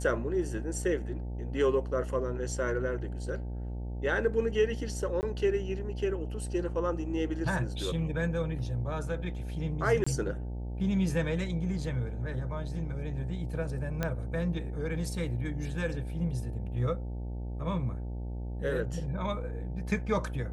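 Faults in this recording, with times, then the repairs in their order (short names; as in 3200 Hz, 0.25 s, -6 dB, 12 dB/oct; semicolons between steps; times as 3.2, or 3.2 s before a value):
buzz 60 Hz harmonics 15 -36 dBFS
5.21–5.23 gap 19 ms
10.04–10.06 gap 25 ms
14.03 pop -16 dBFS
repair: de-click; de-hum 60 Hz, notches 15; interpolate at 5.21, 19 ms; interpolate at 10.04, 25 ms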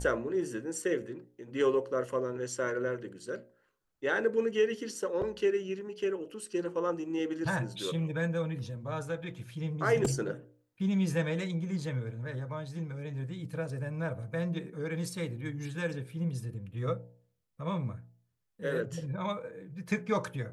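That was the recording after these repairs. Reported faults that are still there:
none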